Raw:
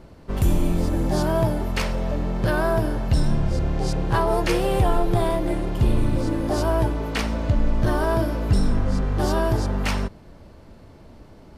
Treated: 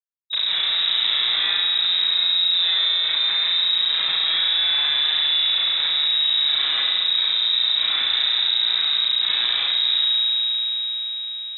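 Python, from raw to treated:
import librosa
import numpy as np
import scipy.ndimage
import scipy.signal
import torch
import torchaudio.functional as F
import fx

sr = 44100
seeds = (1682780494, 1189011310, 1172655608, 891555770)

p1 = fx.vocoder_glide(x, sr, note=55, semitones=-8)
p2 = scipy.signal.sosfilt(scipy.signal.butter(2, 230.0, 'highpass', fs=sr, output='sos'), p1)
p3 = fx.hum_notches(p2, sr, base_hz=50, count=9)
p4 = fx.rider(p3, sr, range_db=3, speed_s=0.5)
p5 = p3 + (p4 * librosa.db_to_amplitude(2.5))
p6 = fx.schmitt(p5, sr, flips_db=-20.0)
p7 = fx.fixed_phaser(p6, sr, hz=1900.0, stages=4)
p8 = 10.0 ** (-28.0 / 20.0) * np.tanh(p7 / 10.0 ** (-28.0 / 20.0))
p9 = fx.granulator(p8, sr, seeds[0], grain_ms=100.0, per_s=20.0, spray_ms=100.0, spread_st=0)
p10 = fx.echo_alternate(p9, sr, ms=111, hz=820.0, feedback_pct=52, wet_db=-12.5)
p11 = fx.rev_spring(p10, sr, rt60_s=1.9, pass_ms=(34,), chirp_ms=35, drr_db=-6.5)
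p12 = fx.freq_invert(p11, sr, carrier_hz=3800)
p13 = fx.env_flatten(p12, sr, amount_pct=70)
y = p13 * librosa.db_to_amplitude(-2.0)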